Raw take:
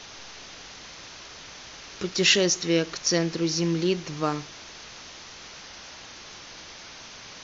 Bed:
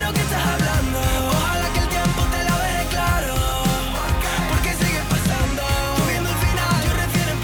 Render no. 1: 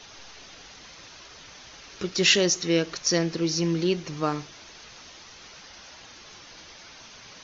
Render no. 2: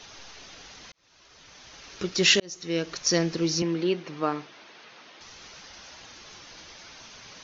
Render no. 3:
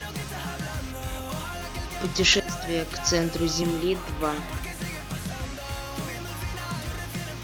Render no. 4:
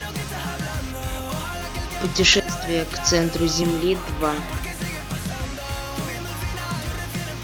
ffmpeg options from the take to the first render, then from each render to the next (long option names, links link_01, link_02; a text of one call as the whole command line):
ffmpeg -i in.wav -af "afftdn=noise_reduction=6:noise_floor=-44" out.wav
ffmpeg -i in.wav -filter_complex "[0:a]asettb=1/sr,asplit=3[link_01][link_02][link_03];[link_01]atrim=end=3.624[link_04];[link_02]atrim=start=3.62:end=5.21,asetpts=PTS-STARTPTS,afade=type=in:duration=0.004:curve=qsin,afade=type=out:start_time=1.586:duration=0.004:curve=qsin,highpass=220,lowpass=3300[link_05];[link_03]atrim=start=5.206[link_06];[link_04][link_05]acrossfade=duration=0.004:curve1=hsin:curve2=qsin[link_07];[link_07][link_06]acrossfade=duration=0.004:curve1=qsin:curve2=hsin,asplit=3[link_08][link_09][link_10];[link_08]atrim=end=0.92,asetpts=PTS-STARTPTS,afade=type=out:start_time=0.916:duration=0.004:curve=hsin[link_11];[link_09]atrim=start=0.92:end=2.4,asetpts=PTS-STARTPTS,afade=type=in:duration=0.96,afade=type=out:start_time=1.476:duration=0.004:curve=hsin[link_12];[link_10]atrim=start=2.4,asetpts=PTS-STARTPTS,afade=type=in:duration=0.63[link_13];[link_11][link_12][link_13]concat=n=3:v=0:a=1" out.wav
ffmpeg -i in.wav -i bed.wav -filter_complex "[1:a]volume=-13.5dB[link_01];[0:a][link_01]amix=inputs=2:normalize=0" out.wav
ffmpeg -i in.wav -af "volume=4.5dB,alimiter=limit=-3dB:level=0:latency=1" out.wav